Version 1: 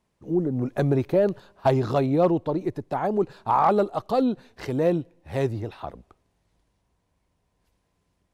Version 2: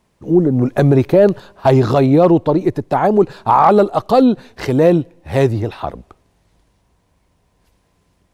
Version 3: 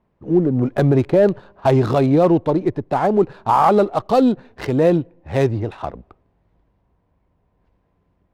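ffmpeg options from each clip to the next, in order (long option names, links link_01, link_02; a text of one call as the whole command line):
ffmpeg -i in.wav -af "alimiter=level_in=12.5dB:limit=-1dB:release=50:level=0:latency=1,volume=-1dB" out.wav
ffmpeg -i in.wav -af "adynamicsmooth=sensitivity=4:basefreq=1800,volume=-3.5dB" out.wav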